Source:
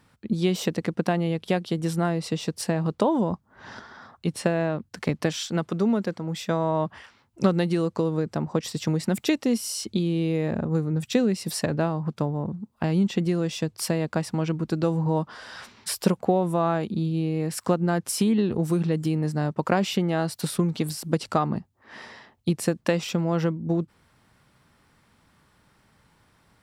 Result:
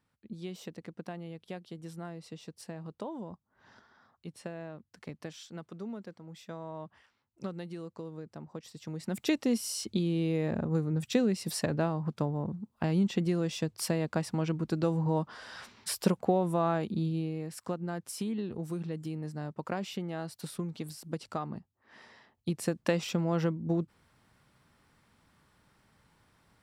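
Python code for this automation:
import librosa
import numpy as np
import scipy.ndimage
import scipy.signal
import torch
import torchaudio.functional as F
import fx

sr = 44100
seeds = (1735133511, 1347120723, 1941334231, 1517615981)

y = fx.gain(x, sr, db=fx.line((8.81, -17.5), (9.32, -5.0), (17.08, -5.0), (17.51, -12.5), (22.04, -12.5), (22.9, -5.0)))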